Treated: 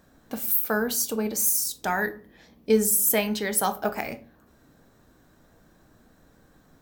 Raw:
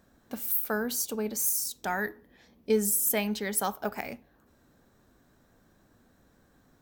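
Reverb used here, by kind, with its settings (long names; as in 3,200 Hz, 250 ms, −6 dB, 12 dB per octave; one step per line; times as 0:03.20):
rectangular room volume 200 cubic metres, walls furnished, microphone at 0.55 metres
level +4.5 dB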